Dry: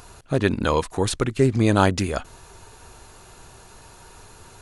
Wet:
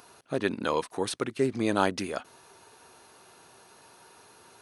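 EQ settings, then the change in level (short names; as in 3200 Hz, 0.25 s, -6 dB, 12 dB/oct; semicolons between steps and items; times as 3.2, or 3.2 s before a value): HPF 220 Hz 12 dB/oct; notch 7200 Hz, Q 5.8; -6.0 dB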